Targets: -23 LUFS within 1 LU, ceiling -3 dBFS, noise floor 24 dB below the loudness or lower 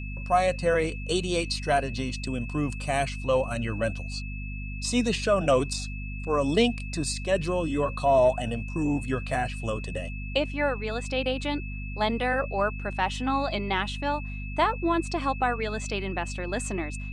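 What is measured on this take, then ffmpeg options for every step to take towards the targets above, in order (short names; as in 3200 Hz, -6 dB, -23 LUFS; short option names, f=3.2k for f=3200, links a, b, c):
hum 50 Hz; harmonics up to 250 Hz; hum level -32 dBFS; steady tone 2600 Hz; tone level -41 dBFS; loudness -27.5 LUFS; peak -10.5 dBFS; loudness target -23.0 LUFS
-> -af "bandreject=f=50:t=h:w=4,bandreject=f=100:t=h:w=4,bandreject=f=150:t=h:w=4,bandreject=f=200:t=h:w=4,bandreject=f=250:t=h:w=4"
-af "bandreject=f=2.6k:w=30"
-af "volume=4.5dB"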